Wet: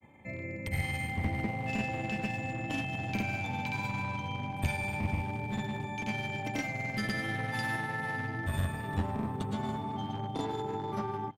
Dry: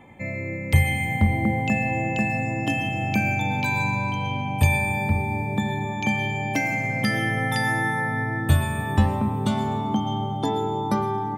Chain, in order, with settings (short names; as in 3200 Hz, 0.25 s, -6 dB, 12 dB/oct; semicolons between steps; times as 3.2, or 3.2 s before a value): one-sided clip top -22.5 dBFS; grains, pitch spread up and down by 0 st; on a send: echo 1.181 s -23.5 dB; on the sum: gain -8 dB